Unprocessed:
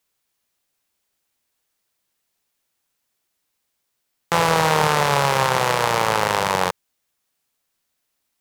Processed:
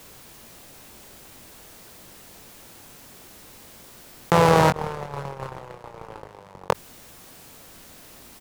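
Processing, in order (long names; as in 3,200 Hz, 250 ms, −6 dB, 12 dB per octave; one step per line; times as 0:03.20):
0:04.70–0:06.70: noise gate −12 dBFS, range −60 dB
tilt shelving filter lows +6 dB, about 830 Hz
double-tracking delay 22 ms −10.5 dB
envelope flattener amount 50%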